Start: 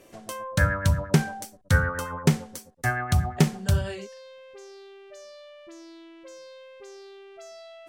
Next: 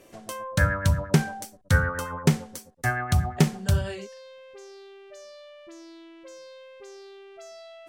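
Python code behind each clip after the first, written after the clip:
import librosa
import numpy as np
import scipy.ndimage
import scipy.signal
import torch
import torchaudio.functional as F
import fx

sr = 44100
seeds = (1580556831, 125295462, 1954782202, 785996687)

y = x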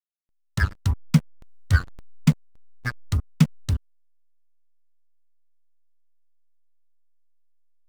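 y = fx.bin_expand(x, sr, power=2.0)
y = scipy.signal.sosfilt(scipy.signal.cheby1(5, 1.0, [270.0, 1000.0], 'bandstop', fs=sr, output='sos'), y)
y = fx.backlash(y, sr, play_db=-22.0)
y = y * 10.0 ** (5.5 / 20.0)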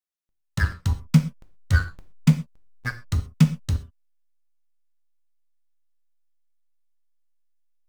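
y = fx.rev_gated(x, sr, seeds[0], gate_ms=150, shape='falling', drr_db=7.0)
y = y * 10.0 ** (-1.0 / 20.0)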